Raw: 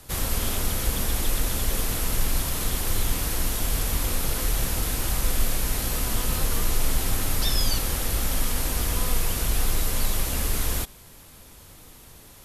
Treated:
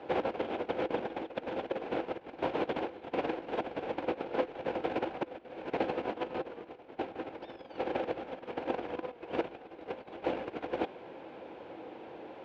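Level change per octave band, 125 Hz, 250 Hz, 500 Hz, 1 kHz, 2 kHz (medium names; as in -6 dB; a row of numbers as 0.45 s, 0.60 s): -22.5 dB, -3.5 dB, +2.5 dB, -1.5 dB, -9.0 dB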